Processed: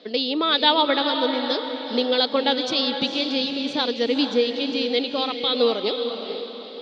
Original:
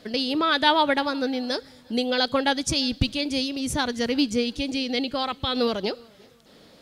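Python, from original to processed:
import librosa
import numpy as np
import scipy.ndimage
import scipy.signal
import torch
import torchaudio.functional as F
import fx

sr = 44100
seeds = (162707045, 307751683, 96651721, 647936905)

y = fx.cabinet(x, sr, low_hz=220.0, low_slope=24, high_hz=4600.0, hz=(460.0, 1600.0, 3700.0), db=(6, -5, 8))
y = fx.echo_diffused(y, sr, ms=461, feedback_pct=45, wet_db=-7.0)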